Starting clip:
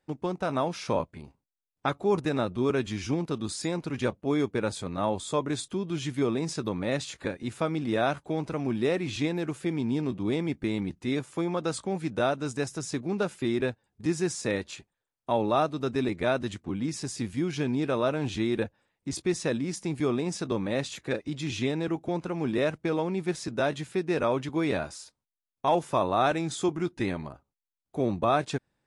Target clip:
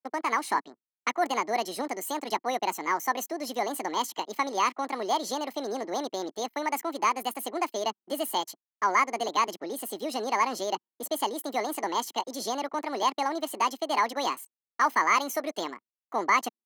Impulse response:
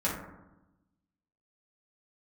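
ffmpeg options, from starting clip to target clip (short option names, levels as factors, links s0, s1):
-af "anlmdn=0.0158,aecho=1:1:1.7:0.51,asetrate=76440,aresample=44100,highpass=f=280:w=0.5412,highpass=f=280:w=1.3066"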